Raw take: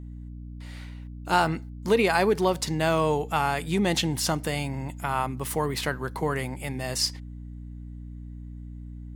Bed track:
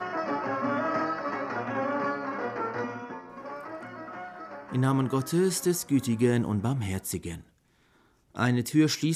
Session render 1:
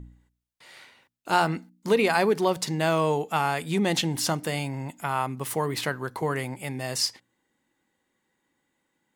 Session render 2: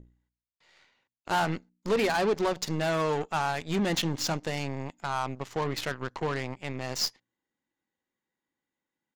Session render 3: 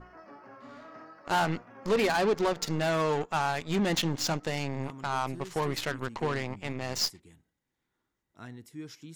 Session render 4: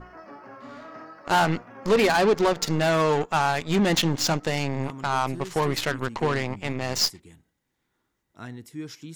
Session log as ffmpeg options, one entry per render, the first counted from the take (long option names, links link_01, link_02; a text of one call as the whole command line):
ffmpeg -i in.wav -af "bandreject=frequency=60:width_type=h:width=4,bandreject=frequency=120:width_type=h:width=4,bandreject=frequency=180:width_type=h:width=4,bandreject=frequency=240:width_type=h:width=4,bandreject=frequency=300:width_type=h:width=4" out.wav
ffmpeg -i in.wav -af "aresample=16000,asoftclip=type=tanh:threshold=-21.5dB,aresample=44100,aeval=exprs='0.119*(cos(1*acos(clip(val(0)/0.119,-1,1)))-cos(1*PI/2))+0.015*(cos(4*acos(clip(val(0)/0.119,-1,1)))-cos(4*PI/2))+0.015*(cos(6*acos(clip(val(0)/0.119,-1,1)))-cos(6*PI/2))+0.0133*(cos(7*acos(clip(val(0)/0.119,-1,1)))-cos(7*PI/2))':channel_layout=same" out.wav
ffmpeg -i in.wav -i bed.wav -filter_complex "[1:a]volume=-20dB[link_01];[0:a][link_01]amix=inputs=2:normalize=0" out.wav
ffmpeg -i in.wav -af "volume=6dB" out.wav